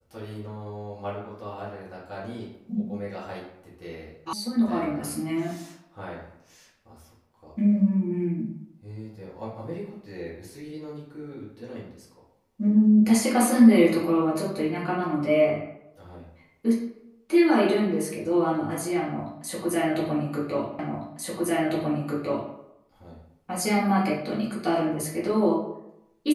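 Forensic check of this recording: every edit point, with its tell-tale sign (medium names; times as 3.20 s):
4.33 s: sound stops dead
20.79 s: repeat of the last 1.75 s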